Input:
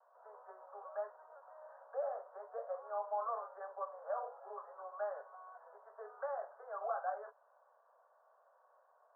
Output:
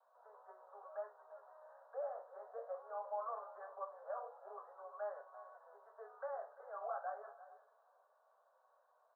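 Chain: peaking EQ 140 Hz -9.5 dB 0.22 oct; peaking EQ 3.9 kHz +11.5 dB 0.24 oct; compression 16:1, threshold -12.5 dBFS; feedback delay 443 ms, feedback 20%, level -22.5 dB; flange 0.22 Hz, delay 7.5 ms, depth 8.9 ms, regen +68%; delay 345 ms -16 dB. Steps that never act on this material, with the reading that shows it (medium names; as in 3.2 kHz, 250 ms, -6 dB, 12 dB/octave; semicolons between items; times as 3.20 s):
peaking EQ 140 Hz: input has nothing below 380 Hz; peaking EQ 3.9 kHz: input has nothing above 1.8 kHz; compression, threshold -12.5 dBFS: peak at its input -25.5 dBFS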